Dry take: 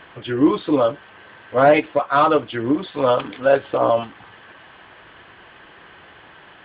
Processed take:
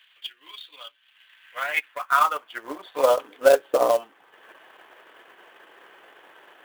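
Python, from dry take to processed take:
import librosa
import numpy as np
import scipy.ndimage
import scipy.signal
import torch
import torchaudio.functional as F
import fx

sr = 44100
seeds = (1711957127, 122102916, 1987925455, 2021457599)

y = fx.filter_sweep_highpass(x, sr, from_hz=3200.0, to_hz=420.0, start_s=1.14, end_s=3.35, q=1.4)
y = fx.quant_float(y, sr, bits=2)
y = fx.transient(y, sr, attack_db=6, sustain_db=-7)
y = y * librosa.db_to_amplitude(-6.5)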